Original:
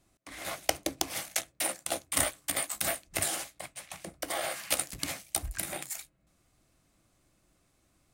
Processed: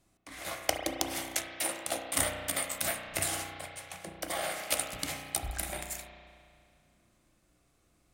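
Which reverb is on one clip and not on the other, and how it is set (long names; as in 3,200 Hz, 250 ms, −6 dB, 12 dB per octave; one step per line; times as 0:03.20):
spring reverb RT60 2.2 s, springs 33 ms, chirp 50 ms, DRR 3 dB
level −1.5 dB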